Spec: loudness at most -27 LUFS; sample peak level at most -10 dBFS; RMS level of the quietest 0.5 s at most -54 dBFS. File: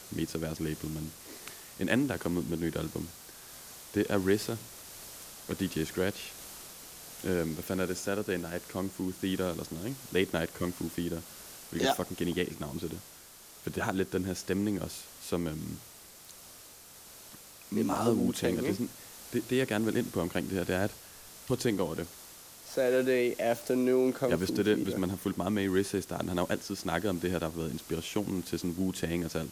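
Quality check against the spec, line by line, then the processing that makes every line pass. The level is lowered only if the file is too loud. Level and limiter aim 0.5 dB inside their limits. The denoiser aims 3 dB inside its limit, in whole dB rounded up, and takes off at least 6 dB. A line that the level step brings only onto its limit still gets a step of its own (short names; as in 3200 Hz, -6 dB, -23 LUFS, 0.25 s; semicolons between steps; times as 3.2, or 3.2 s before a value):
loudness -32.5 LUFS: OK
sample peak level -12.0 dBFS: OK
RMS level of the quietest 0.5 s -52 dBFS: fail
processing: denoiser 6 dB, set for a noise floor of -52 dBFS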